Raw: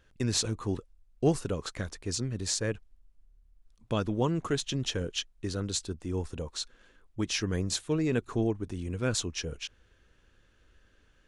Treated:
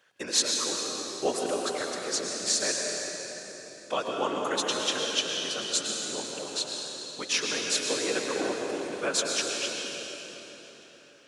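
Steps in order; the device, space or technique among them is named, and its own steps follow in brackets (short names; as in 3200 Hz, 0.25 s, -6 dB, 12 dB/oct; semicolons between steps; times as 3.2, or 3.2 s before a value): whispering ghost (whisperiser; HPF 600 Hz 12 dB/oct; reverb RT60 4.1 s, pre-delay 0.102 s, DRR -0.5 dB); gain +4.5 dB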